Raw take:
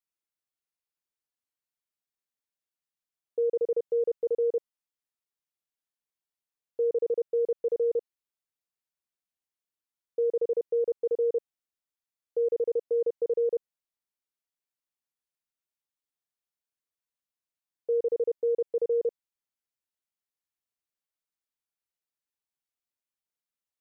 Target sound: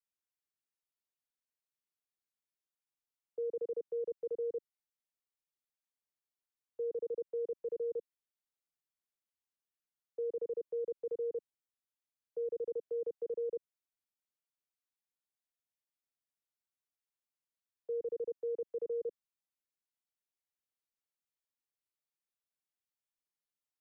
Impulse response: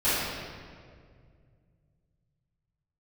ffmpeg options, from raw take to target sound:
-filter_complex "[0:a]acrossover=split=260|300|370[link_01][link_02][link_03][link_04];[link_04]alimiter=level_in=13dB:limit=-24dB:level=0:latency=1:release=43,volume=-13dB[link_05];[link_01][link_02][link_03][link_05]amix=inputs=4:normalize=0,volume=-6dB"

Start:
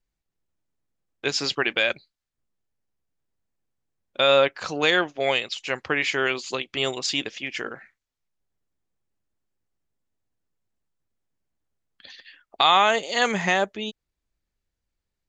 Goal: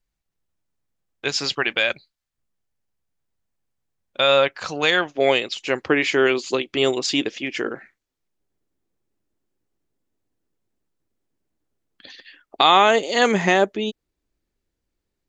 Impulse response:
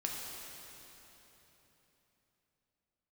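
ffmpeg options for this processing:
-af "asetnsamples=nb_out_samples=441:pad=0,asendcmd='5.15 equalizer g 9',equalizer=frequency=330:width_type=o:width=1.3:gain=-2.5,volume=2dB"

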